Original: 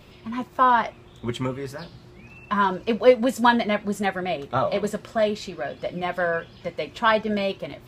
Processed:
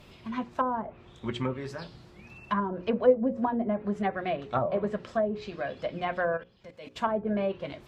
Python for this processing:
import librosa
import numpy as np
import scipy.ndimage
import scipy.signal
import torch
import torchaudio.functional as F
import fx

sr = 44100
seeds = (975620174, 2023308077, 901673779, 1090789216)

y = fx.level_steps(x, sr, step_db=20, at=(6.36, 6.96), fade=0.02)
y = fx.hum_notches(y, sr, base_hz=60, count=9)
y = fx.env_lowpass_down(y, sr, base_hz=540.0, full_db=-17.5)
y = F.gain(torch.from_numpy(y), -3.0).numpy()